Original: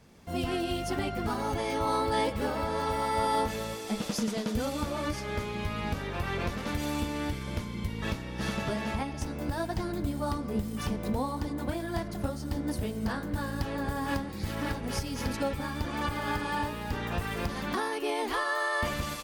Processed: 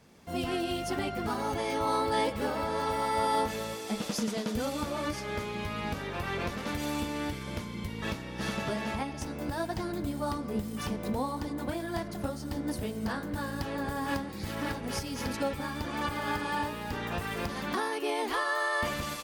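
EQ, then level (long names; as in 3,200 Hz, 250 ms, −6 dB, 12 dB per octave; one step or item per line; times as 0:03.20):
low-shelf EQ 87 Hz −9.5 dB
0.0 dB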